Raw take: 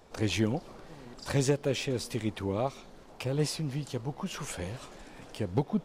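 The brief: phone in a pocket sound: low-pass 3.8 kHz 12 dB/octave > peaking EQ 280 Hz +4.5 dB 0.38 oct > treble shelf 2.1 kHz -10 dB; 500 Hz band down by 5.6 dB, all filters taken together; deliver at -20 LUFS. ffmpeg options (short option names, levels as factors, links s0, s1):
-af "lowpass=3800,equalizer=f=280:t=o:w=0.38:g=4.5,equalizer=f=500:t=o:g=-7,highshelf=f=2100:g=-10,volume=5.31"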